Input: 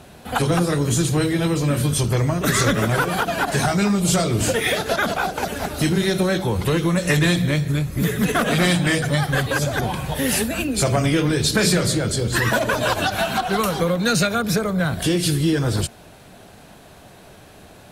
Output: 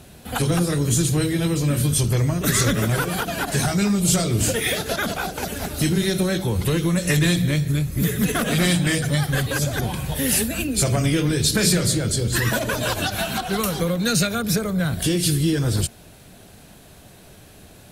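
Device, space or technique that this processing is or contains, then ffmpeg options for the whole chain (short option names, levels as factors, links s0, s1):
smiley-face EQ: -af "lowshelf=f=130:g=4,equalizer=f=920:t=o:w=1.7:g=-5,highshelf=f=7400:g=7,volume=0.841"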